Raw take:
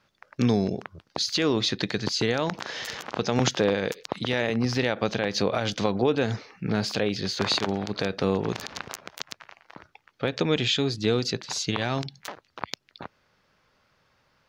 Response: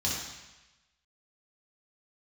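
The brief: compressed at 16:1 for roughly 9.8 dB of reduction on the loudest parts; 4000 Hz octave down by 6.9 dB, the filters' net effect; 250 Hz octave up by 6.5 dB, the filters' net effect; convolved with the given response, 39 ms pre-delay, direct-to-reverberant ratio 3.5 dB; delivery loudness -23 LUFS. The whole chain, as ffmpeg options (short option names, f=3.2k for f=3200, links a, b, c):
-filter_complex "[0:a]equalizer=f=250:t=o:g=8,equalizer=f=4k:t=o:g=-8.5,acompressor=threshold=-21dB:ratio=16,asplit=2[a][b];[1:a]atrim=start_sample=2205,adelay=39[c];[b][c]afir=irnorm=-1:irlink=0,volume=-11dB[d];[a][d]amix=inputs=2:normalize=0,volume=2.5dB"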